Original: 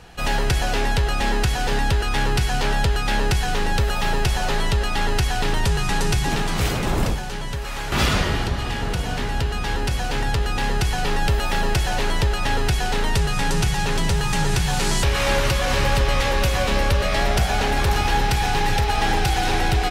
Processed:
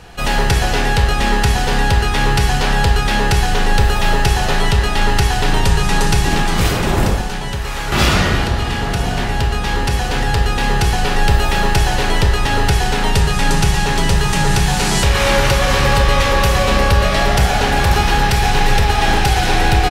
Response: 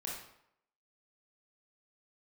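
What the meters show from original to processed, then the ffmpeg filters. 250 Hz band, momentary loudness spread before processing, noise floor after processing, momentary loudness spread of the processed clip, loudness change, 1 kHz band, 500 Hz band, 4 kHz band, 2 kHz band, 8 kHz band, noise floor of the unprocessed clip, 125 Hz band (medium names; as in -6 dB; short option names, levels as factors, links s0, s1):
+6.5 dB, 5 LU, -20 dBFS, 5 LU, +6.0 dB, +6.5 dB, +6.0 dB, +6.0 dB, +6.5 dB, +6.0 dB, -26 dBFS, +6.5 dB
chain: -filter_complex "[0:a]asplit=2[s0][s1];[s1]adelay=140,highpass=300,lowpass=3400,asoftclip=type=hard:threshold=0.141,volume=0.282[s2];[s0][s2]amix=inputs=2:normalize=0,asplit=2[s3][s4];[1:a]atrim=start_sample=2205[s5];[s4][s5]afir=irnorm=-1:irlink=0,volume=0.944[s6];[s3][s6]amix=inputs=2:normalize=0,volume=1.19"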